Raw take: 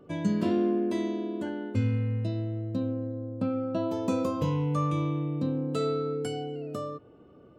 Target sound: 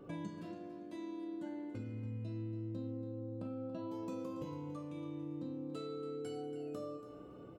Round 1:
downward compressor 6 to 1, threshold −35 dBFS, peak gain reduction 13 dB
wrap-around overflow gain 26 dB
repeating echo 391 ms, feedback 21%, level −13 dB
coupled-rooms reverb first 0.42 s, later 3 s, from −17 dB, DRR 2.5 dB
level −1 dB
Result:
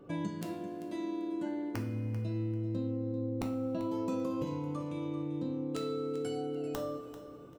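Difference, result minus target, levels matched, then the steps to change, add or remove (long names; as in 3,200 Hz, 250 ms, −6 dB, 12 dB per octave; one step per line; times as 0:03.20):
echo 109 ms late; downward compressor: peak gain reduction −7.5 dB
change: downward compressor 6 to 1, threshold −44 dBFS, peak gain reduction 20.5 dB
change: repeating echo 282 ms, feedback 21%, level −13 dB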